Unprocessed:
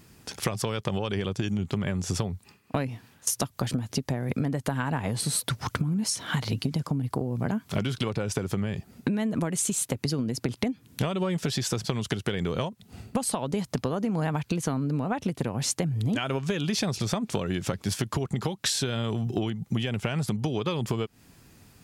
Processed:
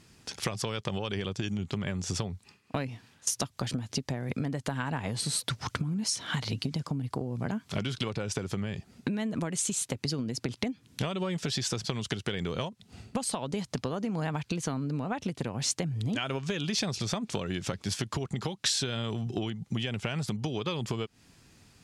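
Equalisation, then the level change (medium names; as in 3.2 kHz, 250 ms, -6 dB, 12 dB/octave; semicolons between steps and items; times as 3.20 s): distance through air 68 m; treble shelf 2.9 kHz +10 dB; -4.5 dB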